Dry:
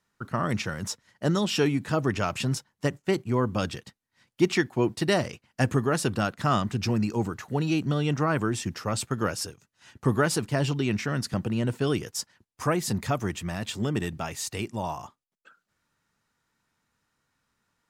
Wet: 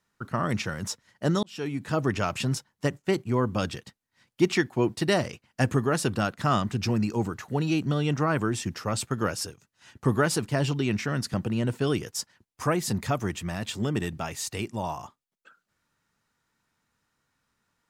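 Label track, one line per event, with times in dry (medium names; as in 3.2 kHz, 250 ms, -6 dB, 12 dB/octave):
1.430000	2.000000	fade in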